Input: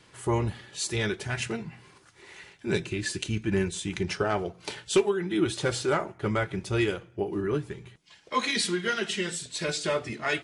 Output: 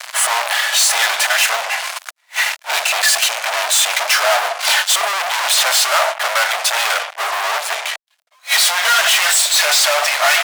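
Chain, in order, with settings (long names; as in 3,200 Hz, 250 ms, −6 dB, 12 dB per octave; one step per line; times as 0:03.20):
fuzz pedal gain 52 dB, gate −53 dBFS
elliptic high-pass filter 640 Hz, stop band 50 dB
level that may rise only so fast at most 390 dB per second
level +2.5 dB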